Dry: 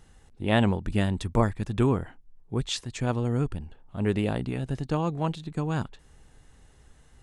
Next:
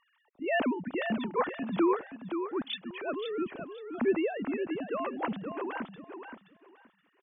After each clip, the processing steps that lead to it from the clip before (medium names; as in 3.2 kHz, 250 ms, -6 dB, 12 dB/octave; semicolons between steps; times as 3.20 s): formants replaced by sine waves; on a send: feedback delay 524 ms, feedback 20%, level -8 dB; on the sum: trim -5.5 dB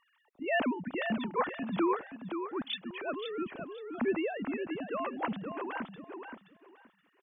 dynamic bell 390 Hz, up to -4 dB, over -41 dBFS, Q 1.3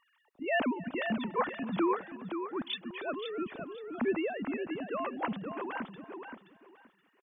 delay 285 ms -22 dB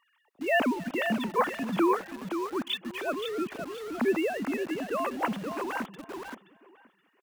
high-pass 140 Hz 6 dB/octave; in parallel at -6 dB: bit crusher 7-bit; on the sum: trim +1.5 dB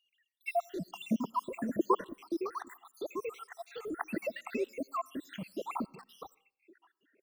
random holes in the spectrogram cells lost 80%; on a send at -23.5 dB: peaking EQ 650 Hz -13.5 dB 0.26 oct + reverberation RT60 0.45 s, pre-delay 50 ms